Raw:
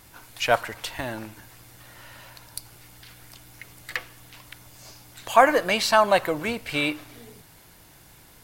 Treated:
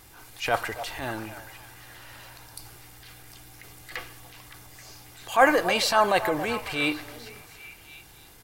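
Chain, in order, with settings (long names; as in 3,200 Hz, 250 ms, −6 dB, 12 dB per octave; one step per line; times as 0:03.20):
comb filter 2.5 ms, depth 30%
transient designer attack −8 dB, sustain +2 dB
echo through a band-pass that steps 277 ms, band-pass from 720 Hz, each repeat 0.7 octaves, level −10 dB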